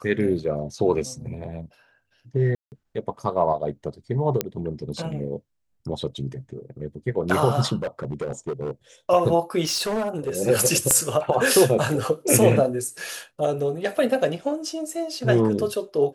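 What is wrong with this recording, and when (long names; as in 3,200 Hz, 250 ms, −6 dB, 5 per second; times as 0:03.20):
0:02.55–0:02.72: drop-out 169 ms
0:04.41: click −6 dBFS
0:07.78–0:08.71: clipping −23.5 dBFS
0:09.64–0:10.38: clipping −21 dBFS
0:10.91: click −4 dBFS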